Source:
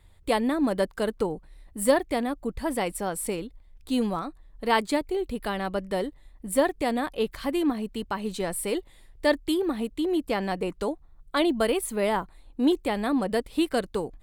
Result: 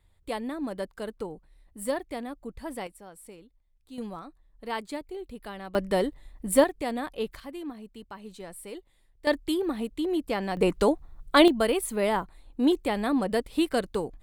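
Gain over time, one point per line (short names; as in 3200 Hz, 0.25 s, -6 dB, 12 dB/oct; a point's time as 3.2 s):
-8.5 dB
from 2.87 s -17.5 dB
from 3.98 s -10 dB
from 5.75 s +3 dB
from 6.64 s -4.5 dB
from 7.4 s -12.5 dB
from 9.27 s -2 dB
from 10.57 s +6.5 dB
from 11.48 s -0.5 dB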